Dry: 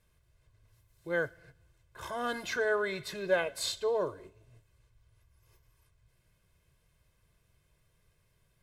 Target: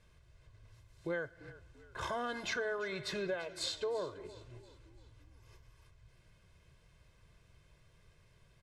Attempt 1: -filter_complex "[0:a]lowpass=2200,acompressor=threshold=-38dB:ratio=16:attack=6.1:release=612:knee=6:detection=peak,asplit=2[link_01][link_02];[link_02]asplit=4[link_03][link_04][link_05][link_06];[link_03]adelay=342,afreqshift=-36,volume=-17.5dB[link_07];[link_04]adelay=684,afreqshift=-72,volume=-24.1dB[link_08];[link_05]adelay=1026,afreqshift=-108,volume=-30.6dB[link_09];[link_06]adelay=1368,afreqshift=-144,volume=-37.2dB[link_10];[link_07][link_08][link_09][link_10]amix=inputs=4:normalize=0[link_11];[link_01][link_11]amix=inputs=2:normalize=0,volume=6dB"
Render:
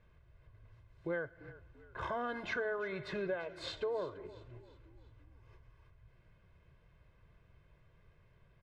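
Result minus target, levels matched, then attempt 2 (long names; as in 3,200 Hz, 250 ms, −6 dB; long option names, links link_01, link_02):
8,000 Hz band −14.0 dB
-filter_complex "[0:a]lowpass=6700,acompressor=threshold=-38dB:ratio=16:attack=6.1:release=612:knee=6:detection=peak,asplit=2[link_01][link_02];[link_02]asplit=4[link_03][link_04][link_05][link_06];[link_03]adelay=342,afreqshift=-36,volume=-17.5dB[link_07];[link_04]adelay=684,afreqshift=-72,volume=-24.1dB[link_08];[link_05]adelay=1026,afreqshift=-108,volume=-30.6dB[link_09];[link_06]adelay=1368,afreqshift=-144,volume=-37.2dB[link_10];[link_07][link_08][link_09][link_10]amix=inputs=4:normalize=0[link_11];[link_01][link_11]amix=inputs=2:normalize=0,volume=6dB"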